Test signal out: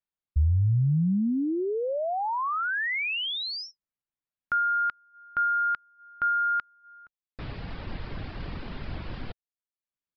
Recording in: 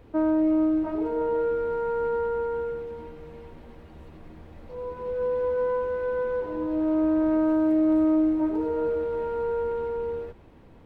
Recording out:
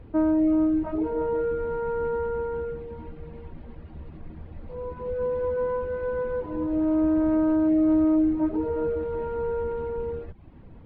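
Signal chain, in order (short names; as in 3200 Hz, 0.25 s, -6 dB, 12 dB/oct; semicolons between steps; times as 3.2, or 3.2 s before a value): downsampling 11025 Hz; reverb removal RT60 0.52 s; tone controls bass +8 dB, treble -9 dB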